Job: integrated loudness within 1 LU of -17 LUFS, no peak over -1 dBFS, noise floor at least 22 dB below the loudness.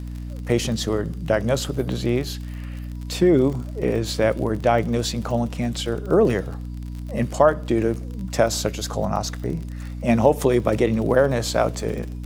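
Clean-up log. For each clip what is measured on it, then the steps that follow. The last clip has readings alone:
tick rate 44 per s; hum 60 Hz; highest harmonic 300 Hz; hum level -29 dBFS; loudness -22.0 LUFS; peak level -3.0 dBFS; loudness target -17.0 LUFS
-> de-click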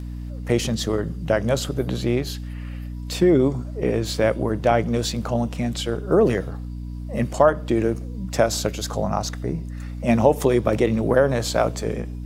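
tick rate 0.16 per s; hum 60 Hz; highest harmonic 300 Hz; hum level -29 dBFS
-> hum notches 60/120/180/240/300 Hz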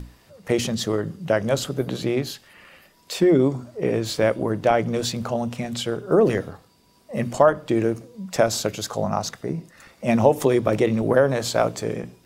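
hum not found; loudness -22.5 LUFS; peak level -3.5 dBFS; loudness target -17.0 LUFS
-> trim +5.5 dB; peak limiter -1 dBFS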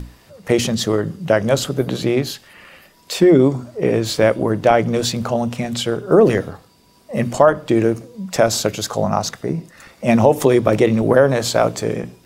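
loudness -17.5 LUFS; peak level -1.0 dBFS; noise floor -51 dBFS

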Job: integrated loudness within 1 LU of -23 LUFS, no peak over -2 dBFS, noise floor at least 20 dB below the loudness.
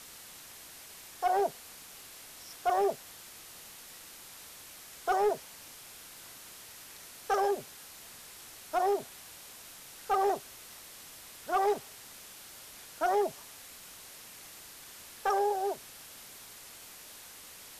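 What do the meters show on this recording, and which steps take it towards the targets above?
clipped samples 0.4%; clipping level -21.5 dBFS; noise floor -50 dBFS; noise floor target -52 dBFS; loudness -31.5 LUFS; peak level -21.5 dBFS; loudness target -23.0 LUFS
-> clip repair -21.5 dBFS; noise print and reduce 6 dB; trim +8.5 dB

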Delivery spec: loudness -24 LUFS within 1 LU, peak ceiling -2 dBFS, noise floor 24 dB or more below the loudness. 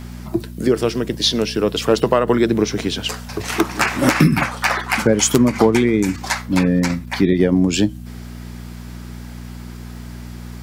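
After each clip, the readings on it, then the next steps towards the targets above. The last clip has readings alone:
tick rate 44 per s; hum 60 Hz; highest harmonic 240 Hz; hum level -30 dBFS; loudness -18.0 LUFS; peak level -1.5 dBFS; loudness target -24.0 LUFS
-> de-click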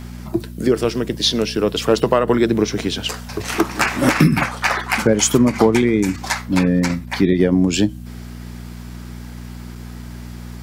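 tick rate 0.66 per s; hum 60 Hz; highest harmonic 240 Hz; hum level -30 dBFS
-> de-hum 60 Hz, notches 4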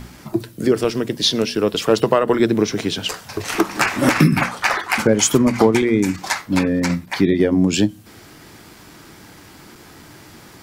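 hum not found; loudness -18.0 LUFS; peak level -1.5 dBFS; loudness target -24.0 LUFS
-> trim -6 dB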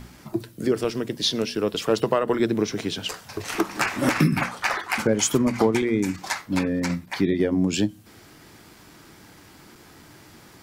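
loudness -24.0 LUFS; peak level -7.5 dBFS; noise floor -50 dBFS

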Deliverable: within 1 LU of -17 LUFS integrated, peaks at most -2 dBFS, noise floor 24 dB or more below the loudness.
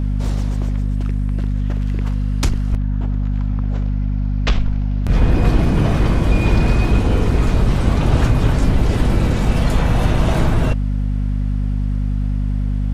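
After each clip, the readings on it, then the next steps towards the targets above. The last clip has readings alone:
hum 50 Hz; highest harmonic 250 Hz; hum level -16 dBFS; loudness -19.0 LUFS; peak level -3.5 dBFS; loudness target -17.0 LUFS
-> hum notches 50/100/150/200/250 Hz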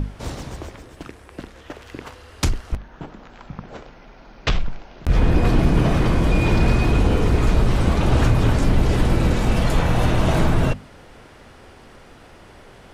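hum not found; loudness -20.0 LUFS; peak level -6.0 dBFS; loudness target -17.0 LUFS
-> trim +3 dB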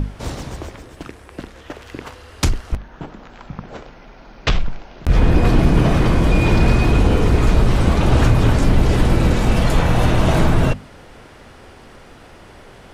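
loudness -17.0 LUFS; peak level -3.0 dBFS; noise floor -43 dBFS

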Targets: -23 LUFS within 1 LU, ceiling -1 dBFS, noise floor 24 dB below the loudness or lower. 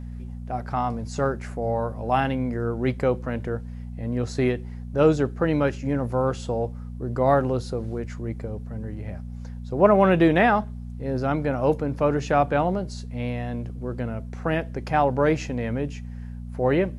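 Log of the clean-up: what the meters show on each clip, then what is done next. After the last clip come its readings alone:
hum 60 Hz; highest harmonic 240 Hz; hum level -32 dBFS; loudness -24.5 LUFS; peak level -3.5 dBFS; loudness target -23.0 LUFS
-> de-hum 60 Hz, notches 4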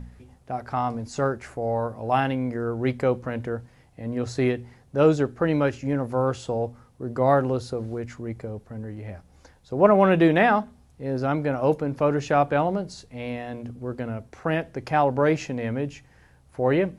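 hum not found; loudness -24.5 LUFS; peak level -3.5 dBFS; loudness target -23.0 LUFS
-> trim +1.5 dB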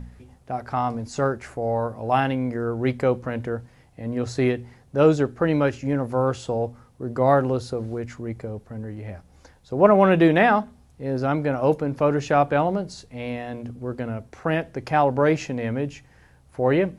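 loudness -23.0 LUFS; peak level -2.0 dBFS; noise floor -55 dBFS

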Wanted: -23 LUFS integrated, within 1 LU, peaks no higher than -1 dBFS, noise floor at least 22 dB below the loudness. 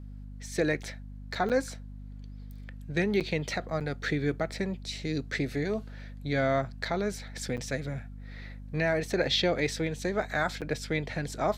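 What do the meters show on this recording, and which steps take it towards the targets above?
dropouts 5; longest dropout 7.7 ms; hum 50 Hz; highest harmonic 250 Hz; hum level -40 dBFS; loudness -31.0 LUFS; peak level -15.0 dBFS; loudness target -23.0 LUFS
-> interpolate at 1.49/3.20/3.80/7.57/10.61 s, 7.7 ms; hum notches 50/100/150/200/250 Hz; trim +8 dB

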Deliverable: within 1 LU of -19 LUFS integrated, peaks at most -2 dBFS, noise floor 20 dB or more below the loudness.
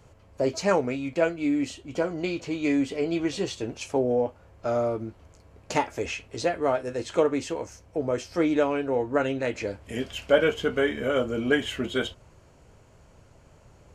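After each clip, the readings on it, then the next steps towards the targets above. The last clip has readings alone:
loudness -27.0 LUFS; peak level -7.0 dBFS; loudness target -19.0 LUFS
-> trim +8 dB; peak limiter -2 dBFS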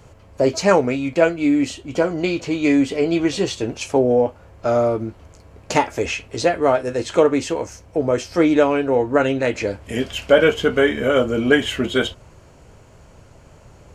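loudness -19.5 LUFS; peak level -2.0 dBFS; noise floor -48 dBFS

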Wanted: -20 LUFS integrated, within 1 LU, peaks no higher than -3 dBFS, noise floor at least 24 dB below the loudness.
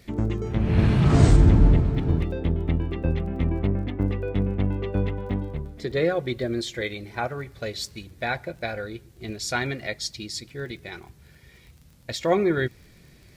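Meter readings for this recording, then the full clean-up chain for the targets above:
tick rate 23 per s; loudness -25.0 LUFS; peak level -3.0 dBFS; loudness target -20.0 LUFS
-> de-click; trim +5 dB; peak limiter -3 dBFS

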